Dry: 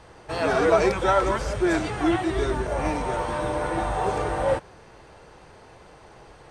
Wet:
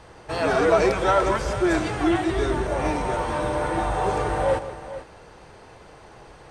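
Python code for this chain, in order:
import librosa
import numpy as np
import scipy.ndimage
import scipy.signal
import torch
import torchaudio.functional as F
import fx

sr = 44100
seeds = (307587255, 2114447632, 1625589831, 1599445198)

p1 = 10.0 ** (-19.5 / 20.0) * np.tanh(x / 10.0 ** (-19.5 / 20.0))
p2 = x + F.gain(torch.from_numpy(p1), -7.0).numpy()
p3 = fx.echo_multitap(p2, sr, ms=(161, 446), db=(-15.0, -13.5))
y = F.gain(torch.from_numpy(p3), -1.5).numpy()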